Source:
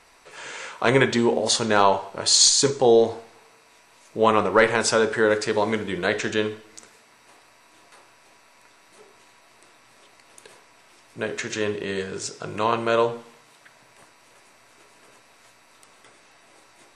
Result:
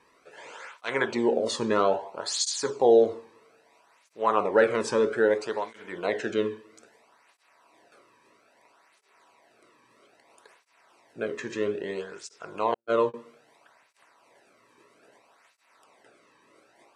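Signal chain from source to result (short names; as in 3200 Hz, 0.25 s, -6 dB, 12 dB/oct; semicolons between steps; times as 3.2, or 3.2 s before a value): 12.74–13.14 gate -21 dBFS, range -58 dB; high shelf 2400 Hz -10 dB; tape flanging out of phase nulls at 0.61 Hz, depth 1.5 ms; gain -1 dB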